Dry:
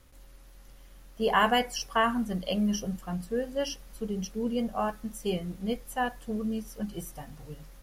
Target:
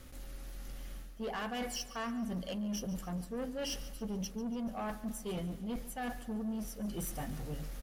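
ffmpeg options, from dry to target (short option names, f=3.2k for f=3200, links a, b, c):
-af "equalizer=f=240:t=o:w=0.42:g=5.5,bandreject=f=1k:w=7.7,areverse,acompressor=threshold=-37dB:ratio=12,areverse,asoftclip=type=tanh:threshold=-39.5dB,aecho=1:1:143|286|429|572|715:0.158|0.0808|0.0412|0.021|0.0107,volume=6dB"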